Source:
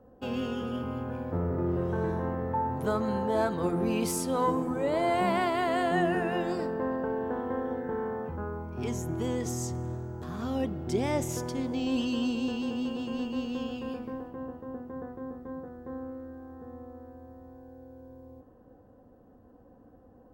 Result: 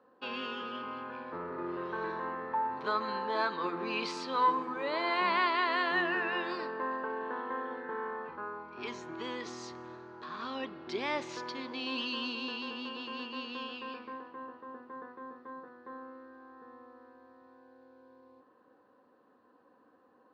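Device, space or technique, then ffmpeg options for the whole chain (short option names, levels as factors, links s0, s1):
phone earpiece: -af "highpass=480,equalizer=f=500:t=q:w=4:g=-5,equalizer=f=710:t=q:w=4:g=-10,equalizer=f=1100:t=q:w=4:g=7,equalizer=f=1700:t=q:w=4:g=4,equalizer=f=2500:t=q:w=4:g=5,equalizer=f=4200:t=q:w=4:g=10,lowpass=f=4500:w=0.5412,lowpass=f=4500:w=1.3066"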